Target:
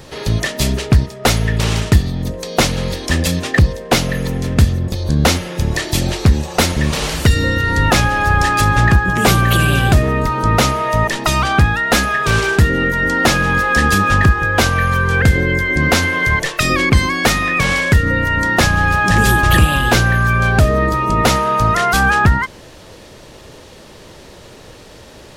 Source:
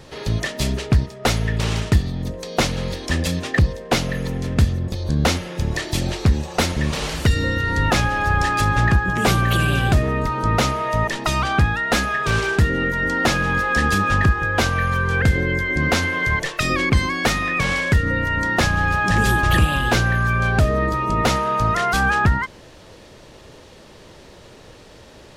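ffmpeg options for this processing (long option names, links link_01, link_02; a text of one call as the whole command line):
ffmpeg -i in.wav -af "highshelf=frequency=10000:gain=8,volume=5dB" out.wav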